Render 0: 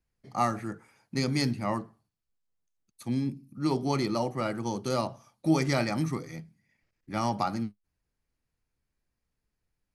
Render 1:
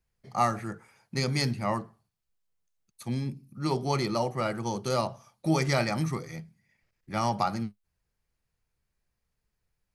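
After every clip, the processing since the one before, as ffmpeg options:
-af "equalizer=f=280:t=o:w=0.43:g=-9,volume=1.26"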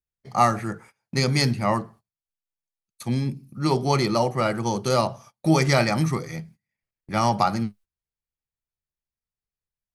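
-af "agate=range=0.0794:threshold=0.00224:ratio=16:detection=peak,volume=2.11"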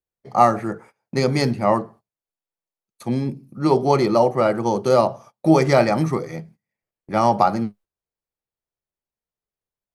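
-af "equalizer=f=500:t=o:w=2.9:g=12.5,volume=0.562"

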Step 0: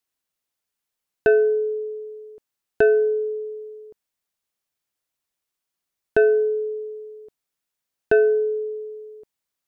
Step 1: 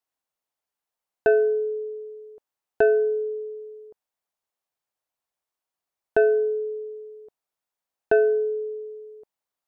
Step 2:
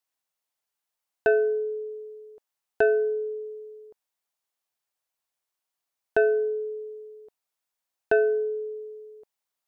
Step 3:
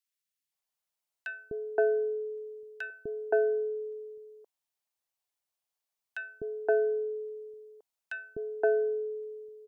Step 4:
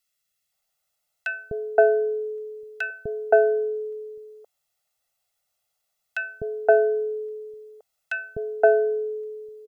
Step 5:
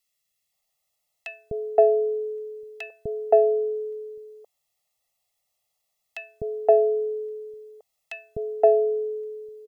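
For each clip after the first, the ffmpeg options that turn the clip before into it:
-af "equalizer=f=780:w=0.88:g=10,volume=0.447"
-af "tiltshelf=f=1300:g=-3.5"
-filter_complex "[0:a]acrossover=split=320|1500[s0][s1][s2];[s0]adelay=250[s3];[s1]adelay=520[s4];[s3][s4][s2]amix=inputs=3:normalize=0,volume=0.708"
-af "aecho=1:1:1.5:0.87,volume=2.51"
-af "asuperstop=centerf=1500:order=4:qfactor=3.2"

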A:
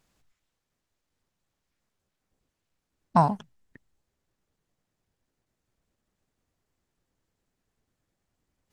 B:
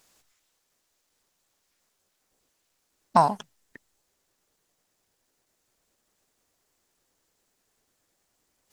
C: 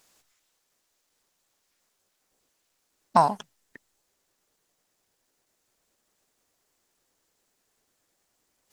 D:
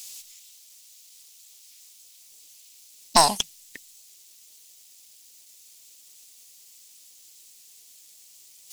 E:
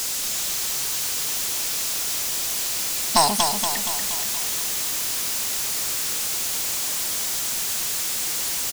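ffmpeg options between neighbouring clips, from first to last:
-filter_complex "[0:a]bass=f=250:g=-12,treble=f=4000:g=7,asplit=2[s0][s1];[s1]acompressor=threshold=0.0447:ratio=6,volume=1.12[s2];[s0][s2]amix=inputs=2:normalize=0"
-af "lowshelf=f=150:g=-4"
-af "aexciter=amount=3.9:drive=9.9:freq=2300,aeval=exprs='(tanh(2.51*val(0)+0.5)-tanh(0.5))/2.51':c=same,volume=1.5"
-filter_complex "[0:a]aeval=exprs='val(0)+0.5*0.112*sgn(val(0))':c=same,asplit=2[s0][s1];[s1]aecho=0:1:236|472|708|944|1180|1416|1652|1888:0.531|0.303|0.172|0.0983|0.056|0.0319|0.0182|0.0104[s2];[s0][s2]amix=inputs=2:normalize=0,volume=0.75"

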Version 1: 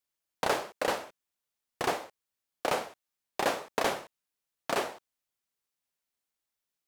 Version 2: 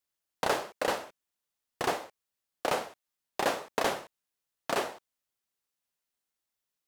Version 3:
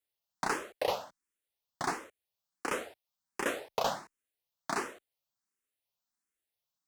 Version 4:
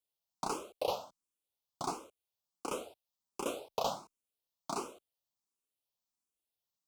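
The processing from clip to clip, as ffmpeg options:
-af "bandreject=f=2300:w=29"
-filter_complex "[0:a]asplit=2[s0][s1];[s1]afreqshift=1.4[s2];[s0][s2]amix=inputs=2:normalize=1"
-af "asuperstop=centerf=1800:order=4:qfactor=1.3,volume=0.75"

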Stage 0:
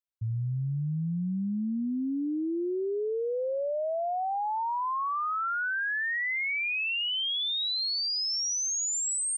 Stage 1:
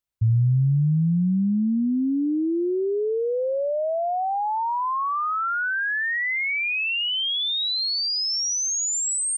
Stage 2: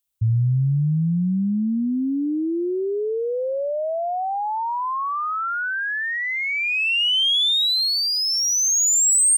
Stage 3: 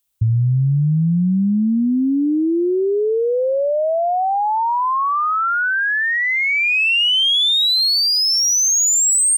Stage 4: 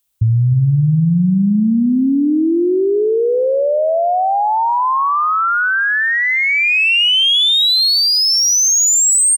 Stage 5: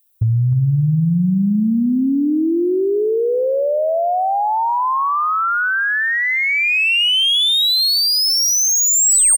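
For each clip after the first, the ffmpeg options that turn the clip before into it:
-af "lowshelf=f=140:g=11.5,volume=1.78"
-af "aexciter=amount=1.4:drive=8.4:freq=2800"
-af "acompressor=threshold=0.0891:ratio=6,volume=2.24"
-filter_complex "[0:a]asplit=2[s0][s1];[s1]adelay=303,lowpass=f=1500:p=1,volume=0.224,asplit=2[s2][s3];[s3]adelay=303,lowpass=f=1500:p=1,volume=0.26,asplit=2[s4][s5];[s5]adelay=303,lowpass=f=1500:p=1,volume=0.26[s6];[s0][s2][s4][s6]amix=inputs=4:normalize=0,volume=1.41"
-af "aexciter=amount=3.7:drive=1.3:freq=8900,volume=2.37,asoftclip=hard,volume=0.422,volume=0.75"

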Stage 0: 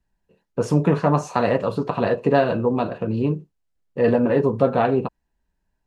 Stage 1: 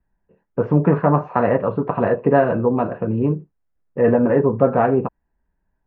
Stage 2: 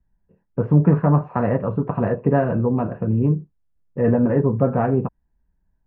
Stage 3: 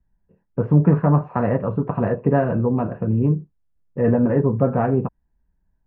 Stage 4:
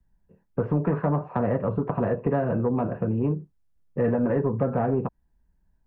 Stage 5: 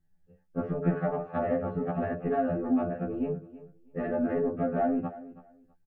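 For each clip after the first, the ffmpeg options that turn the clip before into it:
-af "lowpass=f=2000:w=0.5412,lowpass=f=2000:w=1.3066,volume=1.33"
-af "bass=f=250:g=10,treble=f=4000:g=-9,volume=0.531"
-af anull
-filter_complex "[0:a]acrossover=split=310|820[s0][s1][s2];[s0]acompressor=threshold=0.0447:ratio=4[s3];[s1]acompressor=threshold=0.0562:ratio=4[s4];[s2]acompressor=threshold=0.0158:ratio=4[s5];[s3][s4][s5]amix=inputs=3:normalize=0,asoftclip=type=tanh:threshold=0.224,volume=1.12"
-af "asuperstop=centerf=970:order=12:qfactor=5.4,aecho=1:1:325|650:0.141|0.0268,afftfilt=real='re*2*eq(mod(b,4),0)':imag='im*2*eq(mod(b,4),0)':win_size=2048:overlap=0.75"

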